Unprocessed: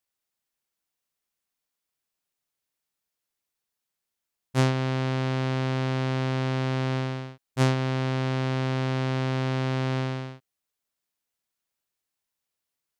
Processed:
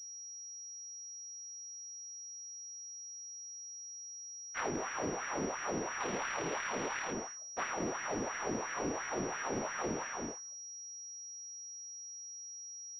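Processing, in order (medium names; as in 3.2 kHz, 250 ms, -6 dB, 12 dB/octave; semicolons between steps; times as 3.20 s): 6.00–7.11 s: spectral contrast reduction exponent 0.45; careless resampling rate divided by 4×, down none, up hold; vibrato 4.6 Hz 61 cents; de-hum 211.9 Hz, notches 9; LFO high-pass sine 2.9 Hz 270–1700 Hz; whisper effect; compression 5:1, threshold -28 dBFS, peak gain reduction 7 dB; class-D stage that switches slowly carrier 5.7 kHz; trim -5 dB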